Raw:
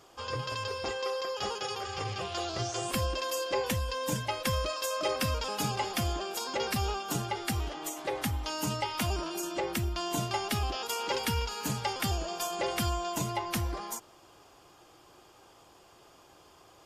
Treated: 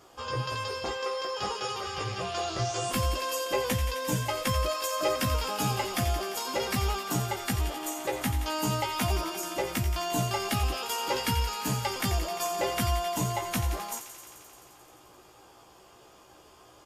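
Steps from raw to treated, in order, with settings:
parametric band 4,000 Hz −3 dB 1.9 octaves
double-tracking delay 16 ms −4 dB
delay with a high-pass on its return 87 ms, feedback 81%, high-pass 1,800 Hz, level −9 dB
level +1.5 dB

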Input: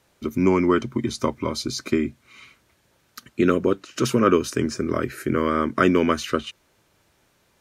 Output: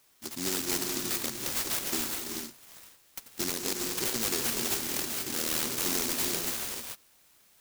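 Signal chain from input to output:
spectral tilt +4.5 dB per octave
brickwall limiter −13 dBFS, peak gain reduction 9.5 dB
reverb whose tail is shaped and stops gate 460 ms rising, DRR 1 dB
short delay modulated by noise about 5,800 Hz, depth 0.43 ms
level −7 dB

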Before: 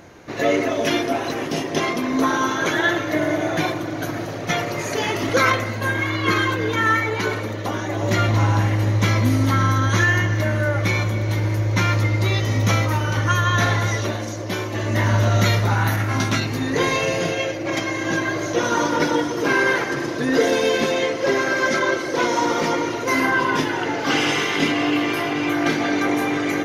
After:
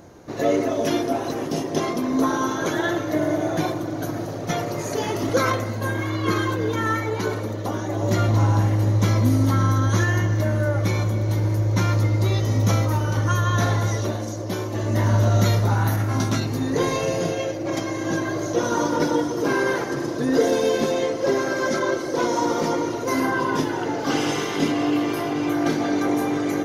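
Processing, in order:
parametric band 2,300 Hz −10.5 dB 1.6 octaves

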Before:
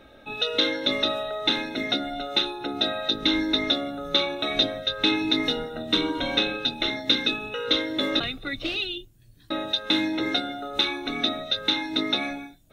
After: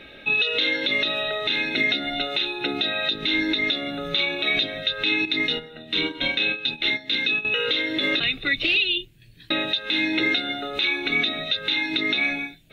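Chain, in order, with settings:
flat-topped bell 2,700 Hz +9 dB
0:05.25–0:07.45: noise gate −22 dBFS, range −12 dB
graphic EQ with 15 bands 160 Hz +8 dB, 400 Hz +6 dB, 2,500 Hz +8 dB
downward compressor 3 to 1, threshold −18 dBFS, peak gain reduction 10 dB
brickwall limiter −12 dBFS, peak gain reduction 11 dB

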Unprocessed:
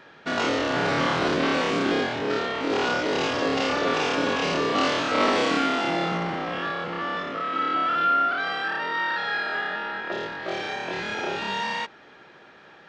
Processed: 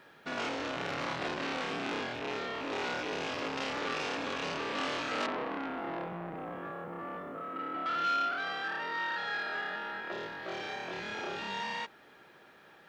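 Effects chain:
loose part that buzzes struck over −34 dBFS, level −18 dBFS
0:05.26–0:07.86: low-pass filter 1,100 Hz 12 dB per octave
bit reduction 11 bits
saturating transformer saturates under 2,200 Hz
level −7.5 dB

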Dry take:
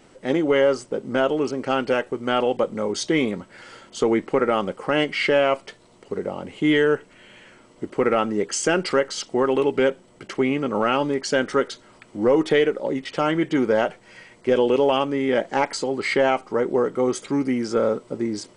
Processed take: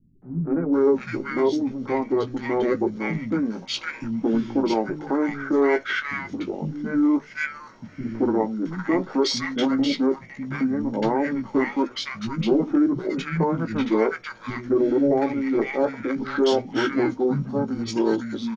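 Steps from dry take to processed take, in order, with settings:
mains-hum notches 50/100/150/200/250 Hz
double-tracking delay 18 ms −8 dB
formants moved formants −6 semitones
three-band delay without the direct sound lows, mids, highs 220/730 ms, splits 200/1,200 Hz

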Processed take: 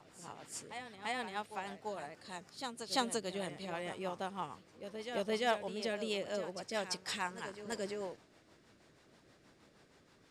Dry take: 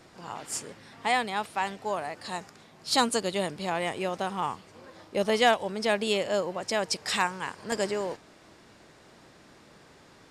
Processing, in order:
backwards echo 342 ms −9 dB
rotating-speaker cabinet horn 6.3 Hz
level −8.5 dB

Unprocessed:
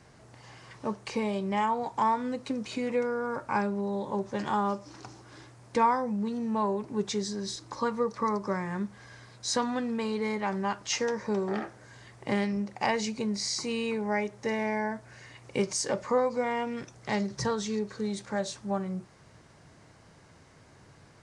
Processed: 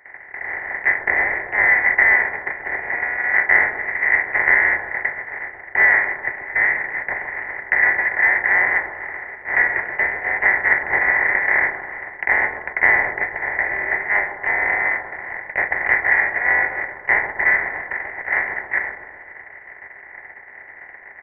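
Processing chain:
compressor on every frequency bin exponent 0.2
Butterworth high-pass 610 Hz 48 dB per octave
noise gate −21 dBFS, range −33 dB
comb filter 0.9 ms, depth 62%
in parallel at −11.5 dB: soft clipping −13.5 dBFS, distortion −16 dB
on the sum: delay with a high-pass on its return 130 ms, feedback 58%, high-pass 2,300 Hz, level −4 dB
voice inversion scrambler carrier 2,900 Hz
level +2 dB

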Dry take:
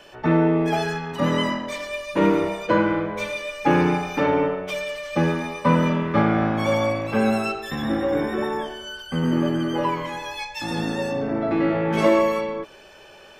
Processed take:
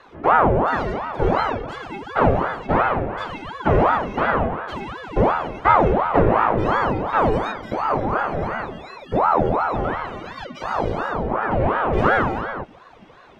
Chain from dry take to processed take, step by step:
RIAA equalisation playback
ring modulator whose carrier an LFO sweeps 660 Hz, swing 70%, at 2.8 Hz
level −1 dB

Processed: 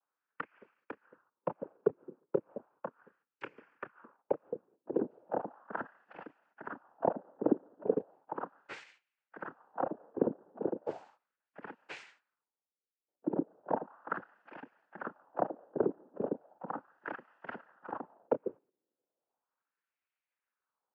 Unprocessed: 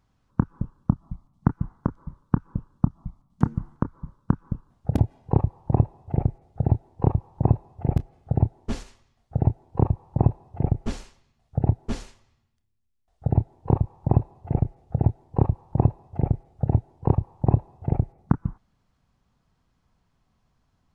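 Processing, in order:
high-pass filter 150 Hz 12 dB per octave
noise gate −55 dBFS, range −11 dB
ring modulation 130 Hz
cochlear-implant simulation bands 8
auto-filter band-pass sine 0.36 Hz 380–2,300 Hz
level +4.5 dB

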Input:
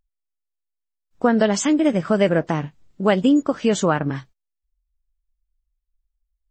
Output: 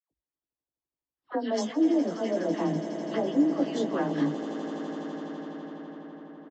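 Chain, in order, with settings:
frequency shifter +16 Hz
reversed playback
downward compressor 6 to 1, threshold −30 dBFS, peak gain reduction 17.5 dB
reversed playback
all-pass dispersion lows, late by 112 ms, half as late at 1,400 Hz
on a send: echo that builds up and dies away 83 ms, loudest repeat 8, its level −15.5 dB
on the sum: low-pass that shuts in the quiet parts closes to 1,500 Hz, open at −33 dBFS
loudspeaker in its box 180–5,400 Hz, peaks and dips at 200 Hz −5 dB, 300 Hz +9 dB, 1,400 Hz −8 dB, 2,400 Hz −9 dB
double-tracking delay 18 ms −5 dB
level +2 dB

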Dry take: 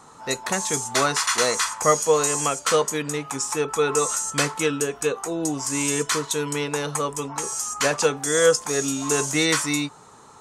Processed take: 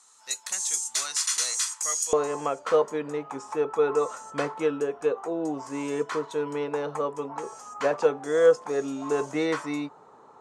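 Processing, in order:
resonant band-pass 7,600 Hz, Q 0.92, from 0:02.13 560 Hz

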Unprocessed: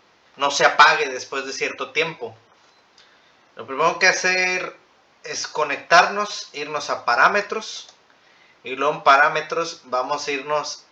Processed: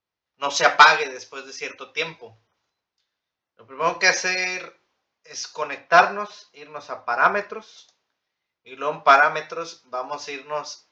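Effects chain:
0:05.78–0:07.78: high-shelf EQ 4,900 Hz −11 dB
multiband upward and downward expander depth 70%
level −5.5 dB

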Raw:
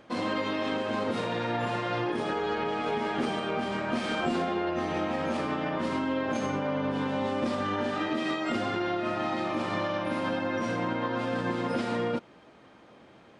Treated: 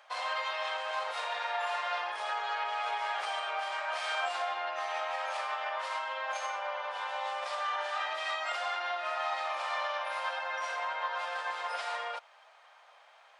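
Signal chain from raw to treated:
Butterworth high-pass 670 Hz 36 dB per octave

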